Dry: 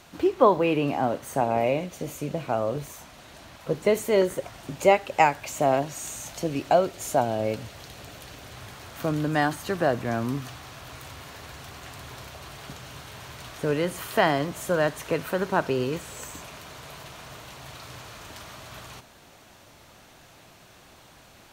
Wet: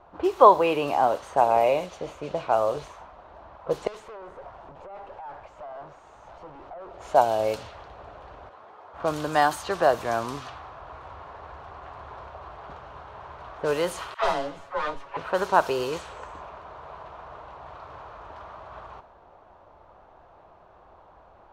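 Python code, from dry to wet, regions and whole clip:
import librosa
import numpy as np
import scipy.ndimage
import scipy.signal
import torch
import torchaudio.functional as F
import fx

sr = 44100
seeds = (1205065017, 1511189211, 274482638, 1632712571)

y = fx.chain(x, sr, fx.highpass(hz=50.0, slope=12),
    fx.over_compress(threshold_db=-24.0, ratio=-0.5),
    fx.tube_stage(drive_db=41.0, bias=0.6), at=(3.87, 6.91))
y = fx.chain(y, sr, fx.highpass(hz=240.0, slope=12),
    fx.ensemble(), at=(8.49, 8.94))
y = fx.chain(y, sr, fx.lower_of_two(delay_ms=7.2),
    fx.comb_fb(f0_hz=94.0, decay_s=0.19, harmonics='all', damping=0.0, mix_pct=70),
    fx.dispersion(late='lows', ms=74.0, hz=640.0), at=(14.14, 15.17))
y = fx.env_lowpass(y, sr, base_hz=900.0, full_db=-21.5)
y = fx.graphic_eq(y, sr, hz=(125, 250, 1000, 2000), db=(-12, -11, 5, -6))
y = y * librosa.db_to_amplitude(4.0)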